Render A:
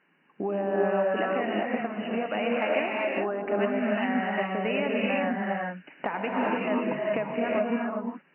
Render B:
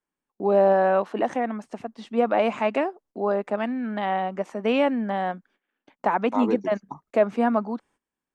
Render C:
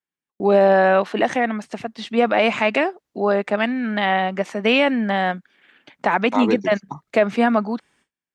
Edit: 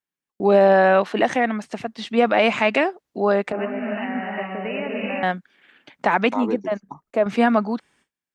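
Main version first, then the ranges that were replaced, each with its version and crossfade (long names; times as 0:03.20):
C
0:03.52–0:05.23: punch in from A
0:06.34–0:07.26: punch in from B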